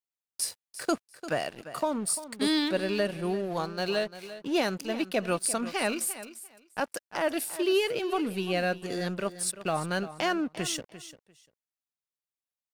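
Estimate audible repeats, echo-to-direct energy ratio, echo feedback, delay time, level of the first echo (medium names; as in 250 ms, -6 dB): 2, -14.0 dB, 17%, 346 ms, -14.0 dB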